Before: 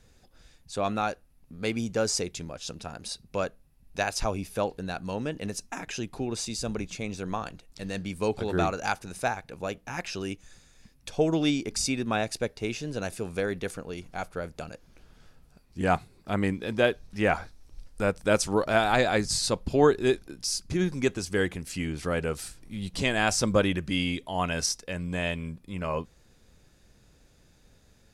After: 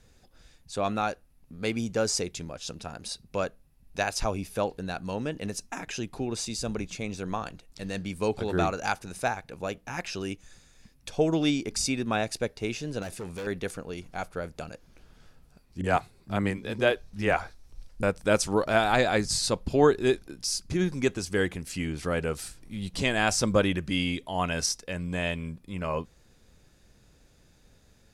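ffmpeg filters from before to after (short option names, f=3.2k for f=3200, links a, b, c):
-filter_complex "[0:a]asettb=1/sr,asplit=3[a][b][c];[a]atrim=end=13.024[d];[b]atrim=start=13.02:end=13.47,asetpts=PTS-STARTPTS,afade=t=in:d=0.004:c=qsin,afade=t=out:st=0.446:d=0.004:c=qsin,asoftclip=type=hard:threshold=-33dB[e];[c]atrim=start=13.466[f];[d][e]acrossfade=d=0.004:c1=hsin:c2=qsin[g];[g][f]acrossfade=d=0.004:c1=qsin:c2=hsin,asettb=1/sr,asplit=3[h][i][j];[h]atrim=end=15.814[k];[i]atrim=start=15.81:end=18.03,asetpts=PTS-STARTPTS,afade=t=in:d=0.004:c=qsin,afade=t=out:st=2.216:d=0.004:c=qsin,acrossover=split=270[l][m];[m]adelay=30[n];[l][n]amix=inputs=2:normalize=0,atrim=end_sample=97902[o];[j]atrim=start=18.026[p];[k][o]acrossfade=d=0.004:c1=hsin:c2=qsin[q];[q][p]acrossfade=d=0.004:c1=qsin:c2=hsin"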